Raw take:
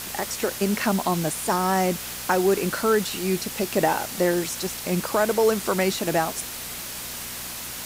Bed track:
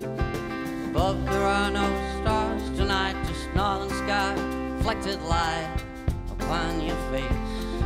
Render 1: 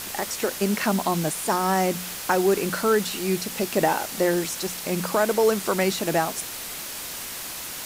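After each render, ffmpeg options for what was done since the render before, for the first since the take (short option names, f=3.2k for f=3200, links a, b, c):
-af "bandreject=f=60:t=h:w=4,bandreject=f=120:t=h:w=4,bandreject=f=180:t=h:w=4,bandreject=f=240:t=h:w=4"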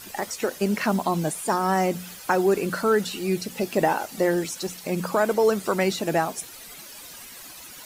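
-af "afftdn=nr=12:nf=-35"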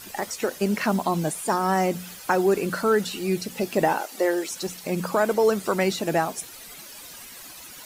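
-filter_complex "[0:a]asettb=1/sr,asplit=3[a][b][c];[a]atrim=end=4.014[d];[b]atrim=start=4.01:end=4.51,asetpts=PTS-STARTPTS,afade=t=in:d=0.004:c=qsin,afade=t=out:st=0.496:d=0.004:c=qsin,highpass=f=300:w=0.5412,highpass=f=300:w=1.3066[e];[c]atrim=start=4.506[f];[d][e]acrossfade=d=0.004:c1=hsin:c2=qsin[g];[g][f]acrossfade=d=0.004:c1=qsin:c2=hsin"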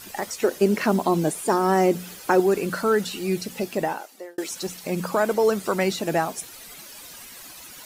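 -filter_complex "[0:a]asettb=1/sr,asplit=3[a][b][c];[a]atrim=end=0.444[d];[b]atrim=start=0.44:end=2.4,asetpts=PTS-STARTPTS,afade=t=in:d=0.004:c=qsin,afade=t=out:st=1.956:d=0.004:c=qsin,equalizer=f=370:w=1.5:g=7.5[e];[c]atrim=start=2.396[f];[d][e]acrossfade=d=0.004:c1=hsin:c2=qsin[g];[g][f]acrossfade=d=0.004:c1=qsin:c2=hsin,asplit=2[h][i];[h]atrim=end=4.38,asetpts=PTS-STARTPTS,afade=t=out:st=3.52:d=0.86[j];[i]atrim=start=4.38,asetpts=PTS-STARTPTS,afade=t=in:d=0.004:c=hsin[k];[j][k]concat=n=2:v=0:a=1"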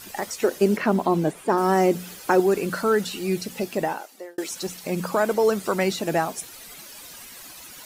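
-filter_complex "[0:a]asettb=1/sr,asplit=3[a][b][c];[a]atrim=end=0.774[d];[b]atrim=start=0.77:end=1.58,asetpts=PTS-STARTPTS,afade=t=in:d=0.004:c=qsin,afade=t=out:st=0.806:d=0.004:c=qsin,acrossover=split=3200[e][f];[f]acompressor=threshold=-46dB:ratio=4:attack=1:release=60[g];[e][g]amix=inputs=2:normalize=0[h];[c]atrim=start=1.576[i];[d][h]acrossfade=d=0.004:c1=hsin:c2=qsin[j];[j][i]acrossfade=d=0.004:c1=qsin:c2=hsin"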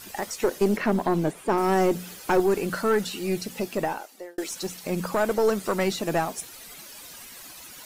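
-af "aeval=exprs='(tanh(3.98*val(0)+0.4)-tanh(0.4))/3.98':c=same"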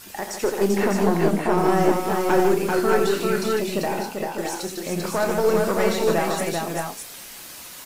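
-filter_complex "[0:a]asplit=2[a][b];[b]adelay=30,volume=-10.5dB[c];[a][c]amix=inputs=2:normalize=0,asplit=2[d][e];[e]aecho=0:1:84|150|392|597|620:0.398|0.447|0.668|0.422|0.562[f];[d][f]amix=inputs=2:normalize=0"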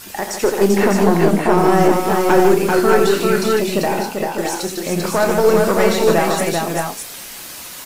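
-af "volume=6.5dB,alimiter=limit=-2dB:level=0:latency=1"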